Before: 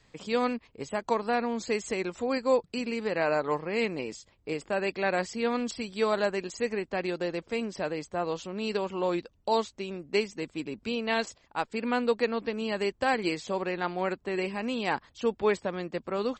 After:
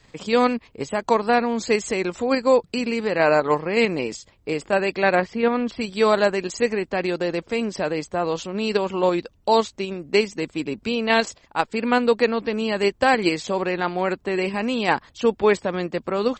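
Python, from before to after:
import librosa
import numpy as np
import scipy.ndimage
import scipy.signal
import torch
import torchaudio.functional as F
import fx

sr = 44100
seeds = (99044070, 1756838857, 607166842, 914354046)

p1 = fx.lowpass(x, sr, hz=2600.0, slope=12, at=(5.15, 5.81))
p2 = fx.level_steps(p1, sr, step_db=9)
p3 = p1 + (p2 * 10.0 ** (2.0 / 20.0))
y = p3 * 10.0 ** (3.0 / 20.0)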